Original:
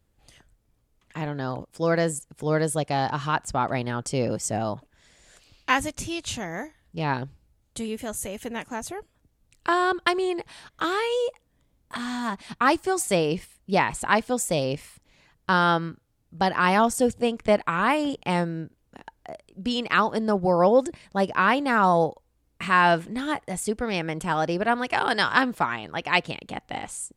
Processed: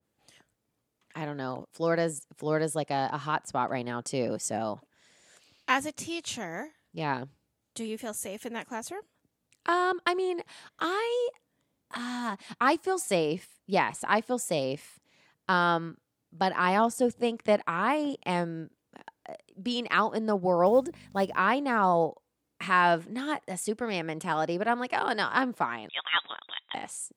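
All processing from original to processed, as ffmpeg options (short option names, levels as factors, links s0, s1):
-filter_complex "[0:a]asettb=1/sr,asplit=3[s0][s1][s2];[s0]atrim=end=20.664[s3];[s1]atrim=start=20.66:end=21.37,asetpts=PTS-STARTPTS,afade=t=in:d=0.004:c=qsin,afade=t=out:st=0.706:d=0.004:c=qsin,aeval=exprs='val(0)+0.0112*(sin(2*PI*50*n/s)+sin(2*PI*2*50*n/s)/2+sin(2*PI*3*50*n/s)/3+sin(2*PI*4*50*n/s)/4+sin(2*PI*5*50*n/s)/5)':c=same,acrusher=bits=8:mode=log:mix=0:aa=0.000001[s4];[s2]atrim=start=21.366[s5];[s3][s4]acrossfade=d=0.004:c1=hsin:c2=qsin[s6];[s6][s5]acrossfade=d=0.004:c1=qsin:c2=hsin,asettb=1/sr,asplit=3[s7][s8][s9];[s7]atrim=end=25.894[s10];[s8]atrim=start=25.89:end=26.74,asetpts=PTS-STARTPTS,afade=t=in:d=0.004:c=qsin,afade=t=out:st=0.846:d=0.004:c=qsin,aemphasis=mode=production:type=bsi,volume=3.76,asoftclip=hard,volume=0.266,lowpass=f=3300:t=q:w=0.5098,lowpass=f=3300:t=q:w=0.6013,lowpass=f=3300:t=q:w=0.9,lowpass=f=3300:t=q:w=2.563,afreqshift=-3900[s11];[s9]atrim=start=26.736[s12];[s10][s11]acrossfade=d=0.004:c1=hsin:c2=qsin[s13];[s13][s12]acrossfade=d=0.004:c1=qsin:c2=hsin,highpass=170,adynamicequalizer=threshold=0.0224:dfrequency=1500:dqfactor=0.7:tfrequency=1500:tqfactor=0.7:attack=5:release=100:ratio=0.375:range=3.5:mode=cutabove:tftype=highshelf,volume=0.668"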